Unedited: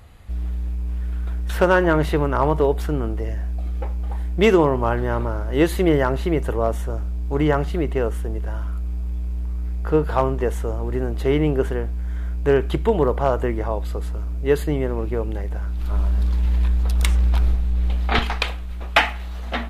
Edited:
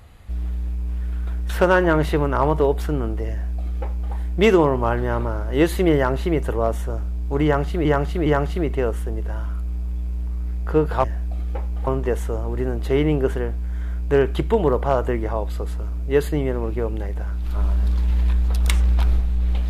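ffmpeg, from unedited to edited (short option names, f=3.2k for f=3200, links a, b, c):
-filter_complex "[0:a]asplit=5[a][b][c][d][e];[a]atrim=end=7.852[f];[b]atrim=start=7.438:end=7.852[g];[c]atrim=start=7.438:end=10.222[h];[d]atrim=start=3.308:end=4.142[i];[e]atrim=start=10.218[j];[f][g]acrossfade=d=0.004:c1=hsin:c2=hsin[k];[k][h]acrossfade=d=0.004:c1=hsin:c2=hsin[l];[l][i]acrossfade=d=0.004:c1=hsin:c2=hsin[m];[m][j]acrossfade=d=0.004:c1=hsin:c2=hsin"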